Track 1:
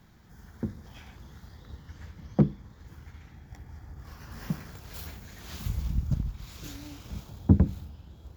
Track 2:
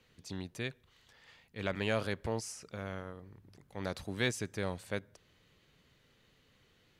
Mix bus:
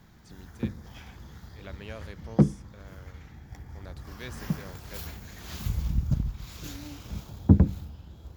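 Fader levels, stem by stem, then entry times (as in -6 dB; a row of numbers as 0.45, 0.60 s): +2.0, -10.0 dB; 0.00, 0.00 s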